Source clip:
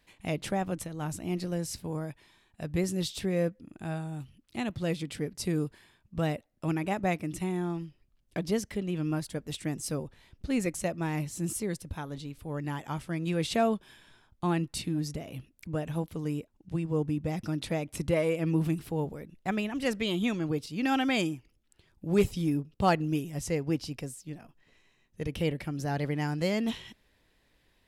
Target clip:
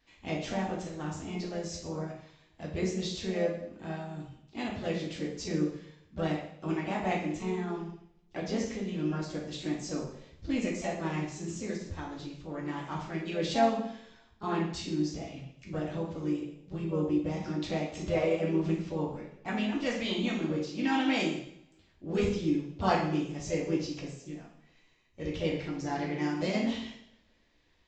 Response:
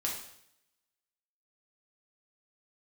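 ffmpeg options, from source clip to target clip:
-filter_complex "[1:a]atrim=start_sample=2205[link_01];[0:a][link_01]afir=irnorm=-1:irlink=0,asplit=2[link_02][link_03];[link_03]asetrate=52444,aresample=44100,atempo=0.840896,volume=-8dB[link_04];[link_02][link_04]amix=inputs=2:normalize=0,aresample=16000,aresample=44100,volume=-5dB"

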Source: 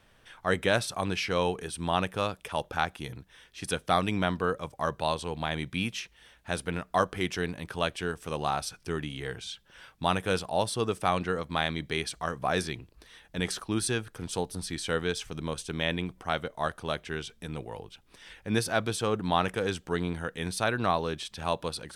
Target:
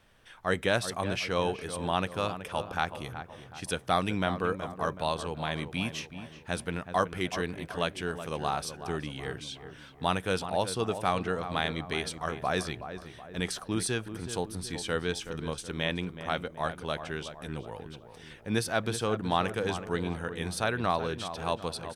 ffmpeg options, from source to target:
ffmpeg -i in.wav -filter_complex "[0:a]asplit=2[link_01][link_02];[link_02]adelay=374,lowpass=frequency=1800:poles=1,volume=-10dB,asplit=2[link_03][link_04];[link_04]adelay=374,lowpass=frequency=1800:poles=1,volume=0.5,asplit=2[link_05][link_06];[link_06]adelay=374,lowpass=frequency=1800:poles=1,volume=0.5,asplit=2[link_07][link_08];[link_08]adelay=374,lowpass=frequency=1800:poles=1,volume=0.5,asplit=2[link_09][link_10];[link_10]adelay=374,lowpass=frequency=1800:poles=1,volume=0.5[link_11];[link_01][link_03][link_05][link_07][link_09][link_11]amix=inputs=6:normalize=0,volume=-1.5dB" out.wav

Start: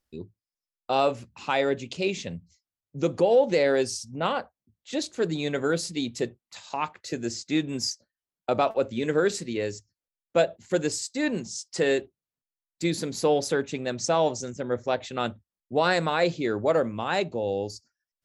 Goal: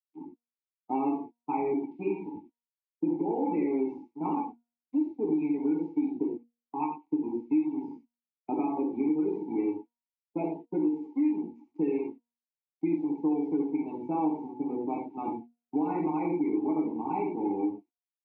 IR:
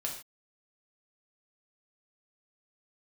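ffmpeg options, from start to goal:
-filter_complex "[0:a]aecho=1:1:88|176|264:0.266|0.0585|0.0129,aresample=16000,aeval=exprs='val(0)*gte(abs(val(0)),0.0376)':channel_layout=same,aresample=44100,deesser=0.75,asplit=3[link_01][link_02][link_03];[link_01]bandpass=frequency=300:width_type=q:width=8,volume=0dB[link_04];[link_02]bandpass=frequency=870:width_type=q:width=8,volume=-6dB[link_05];[link_03]bandpass=frequency=2240:width_type=q:width=8,volume=-9dB[link_06];[link_04][link_05][link_06]amix=inputs=3:normalize=0,tiltshelf=frequency=1100:gain=8.5,bandreject=frequency=236.9:width_type=h:width=4,bandreject=frequency=473.8:width_type=h:width=4,bandreject=frequency=710.7:width_type=h:width=4,bandreject=frequency=947.6:width_type=h:width=4,bandreject=frequency=1184.5:width_type=h:width=4,bandreject=frequency=1421.4:width_type=h:width=4,bandreject=frequency=1658.3:width_type=h:width=4,asplit=2[link_07][link_08];[link_08]alimiter=limit=-22dB:level=0:latency=1:release=166,volume=-1.5dB[link_09];[link_07][link_09]amix=inputs=2:normalize=0[link_10];[1:a]atrim=start_sample=2205,atrim=end_sample=3528,asetrate=27342,aresample=44100[link_11];[link_10][link_11]afir=irnorm=-1:irlink=0,afftdn=noise_reduction=21:noise_floor=-39,acrossover=split=160|1700[link_12][link_13][link_14];[link_12]acompressor=threshold=-51dB:ratio=4[link_15];[link_13]acompressor=threshold=-24dB:ratio=4[link_16];[link_14]acompressor=threshold=-49dB:ratio=4[link_17];[link_15][link_16][link_17]amix=inputs=3:normalize=0,volume=-2dB"

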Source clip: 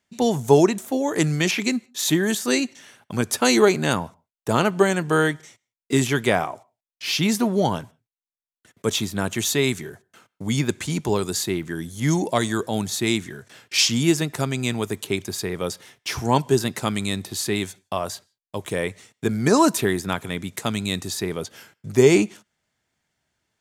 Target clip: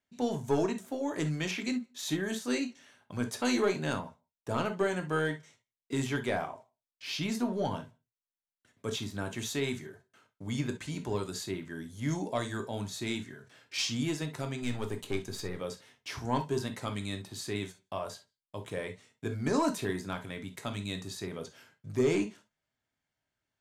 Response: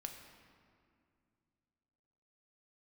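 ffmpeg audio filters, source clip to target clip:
-filter_complex "[0:a]acontrast=54,asettb=1/sr,asplit=3[link_01][link_02][link_03];[link_01]atrim=end=14.624[link_04];[link_02]atrim=start=14.62:end=15.58,asetpts=PTS-STARTPTS,afade=type=in:duration=0.004:curve=qsin,afade=type=out:start_time=0.956:duration=0.004:curve=qsin,aeval=exprs='0.596*(cos(1*acos(clip(val(0)/0.596,-1,1)))-cos(1*PI/2))+0.0841*(cos(4*acos(clip(val(0)/0.596,-1,1)))-cos(4*PI/2))+0.0335*(cos(5*acos(clip(val(0)/0.596,-1,1)))-cos(5*PI/2))':channel_layout=same[link_05];[link_03]atrim=start=15.576[link_06];[link_04][link_05]acrossfade=duration=0.004:curve1=hsin:curve2=qsin[link_07];[link_07][link_06]acrossfade=duration=0.004:curve1=qsin:curve2=hsin,highshelf=frequency=7700:gain=-9[link_08];[1:a]atrim=start_sample=2205,afade=type=out:start_time=0.18:duration=0.01,atrim=end_sample=8379,asetrate=79380,aresample=44100[link_09];[link_08][link_09]afir=irnorm=-1:irlink=0,volume=-7.5dB"

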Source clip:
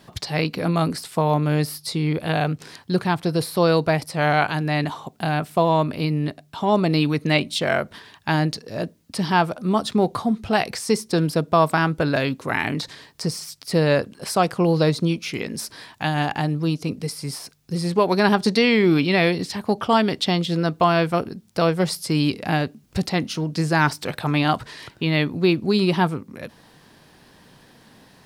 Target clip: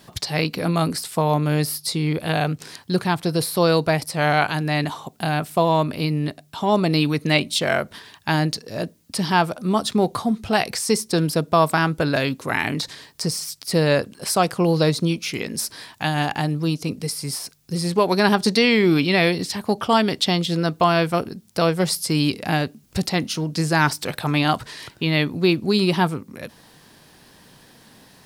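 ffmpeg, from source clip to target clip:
ffmpeg -i in.wav -af "highshelf=frequency=4800:gain=7.5" out.wav

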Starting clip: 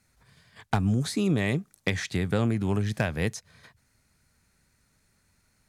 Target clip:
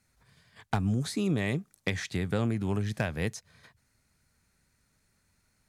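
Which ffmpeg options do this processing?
ffmpeg -i in.wav -af "volume=-3dB" -ar 44100 -c:a libmp3lame -b:a 128k out.mp3

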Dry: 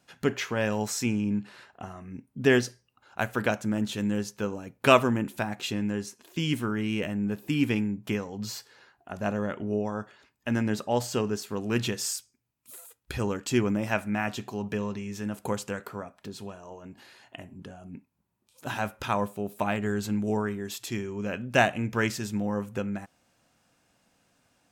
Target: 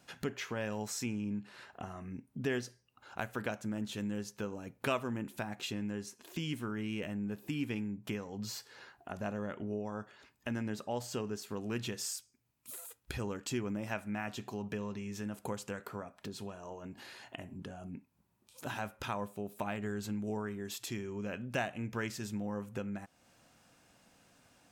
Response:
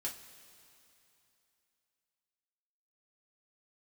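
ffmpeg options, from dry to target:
-af "acompressor=threshold=-48dB:ratio=2,volume=3dB"

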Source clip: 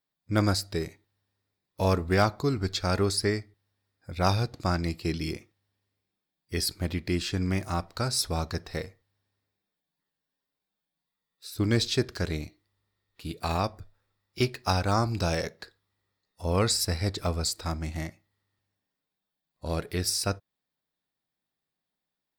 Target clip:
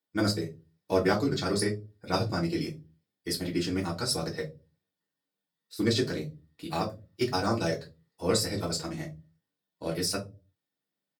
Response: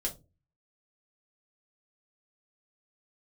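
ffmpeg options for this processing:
-filter_complex "[0:a]highpass=frequency=120:width=0.5412,highpass=frequency=120:width=1.3066,atempo=2[link_01];[1:a]atrim=start_sample=2205,afade=type=out:start_time=0.4:duration=0.01,atrim=end_sample=18081,asetrate=41013,aresample=44100[link_02];[link_01][link_02]afir=irnorm=-1:irlink=0,volume=-3.5dB"

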